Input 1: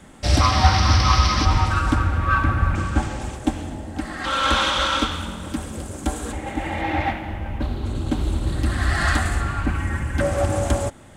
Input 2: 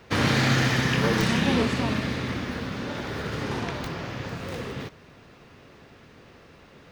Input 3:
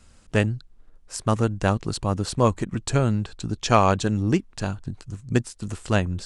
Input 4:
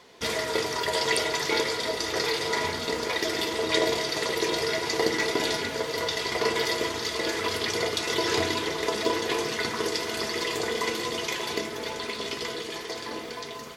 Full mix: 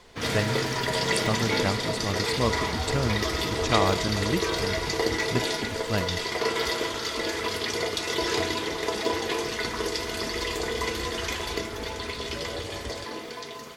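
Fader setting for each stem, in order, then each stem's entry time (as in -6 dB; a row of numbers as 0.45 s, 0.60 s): -18.0 dB, -10.0 dB, -6.5 dB, -1.0 dB; 2.15 s, 0.05 s, 0.00 s, 0.00 s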